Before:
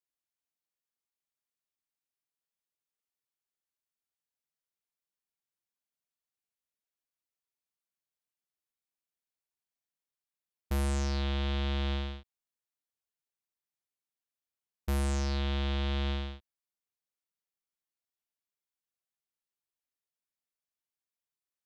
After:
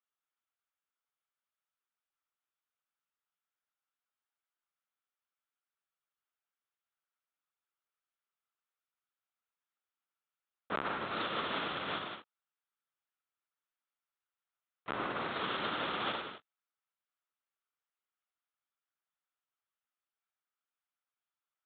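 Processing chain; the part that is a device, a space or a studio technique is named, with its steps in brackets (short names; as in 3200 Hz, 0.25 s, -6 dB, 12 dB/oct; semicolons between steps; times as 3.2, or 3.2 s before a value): talking toy (LPC vocoder at 8 kHz; HPF 380 Hz 12 dB/oct; bell 1300 Hz +11 dB 0.51 oct)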